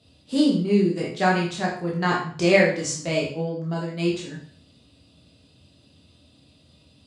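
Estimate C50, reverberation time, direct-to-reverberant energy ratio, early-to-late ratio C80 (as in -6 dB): 5.0 dB, 0.45 s, -4.0 dB, 9.5 dB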